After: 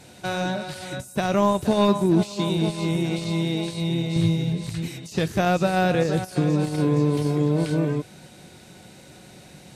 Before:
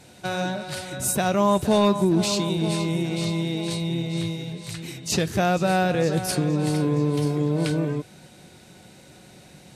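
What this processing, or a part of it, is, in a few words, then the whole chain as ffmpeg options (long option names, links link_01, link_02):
de-esser from a sidechain: -filter_complex "[0:a]asettb=1/sr,asplit=3[link_01][link_02][link_03];[link_01]atrim=end=4.164[link_04];[link_02]atrim=start=4.16:end=4.88,asetpts=PTS-STARTPTS,afade=type=in:duration=0.004:curve=qsin,afade=type=out:start_time=0.716:duration=0.004:curve=qsin,lowshelf=frequency=230:gain=10.5[link_05];[link_03]atrim=start=4.876[link_06];[link_04][link_05]acrossfade=duration=0.004:curve1=hsin:curve2=qsin[link_07];[link_07][link_06]acrossfade=duration=0.004:curve1=qsin:curve2=hsin,asplit=2[link_08][link_09];[link_09]highpass=frequency=6100:width=0.5412,highpass=frequency=6100:width=1.3066,apad=whole_len=430398[link_10];[link_08][link_10]sidechaincompress=threshold=-43dB:ratio=16:attack=0.86:release=23,volume=2dB"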